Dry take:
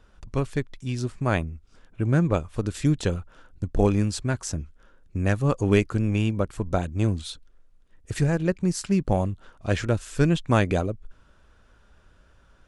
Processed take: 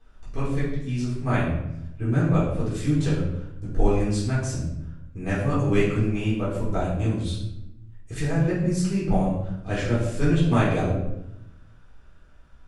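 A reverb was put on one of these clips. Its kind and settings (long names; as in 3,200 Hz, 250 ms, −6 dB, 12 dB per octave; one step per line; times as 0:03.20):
rectangular room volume 250 cubic metres, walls mixed, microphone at 3.8 metres
level −11.5 dB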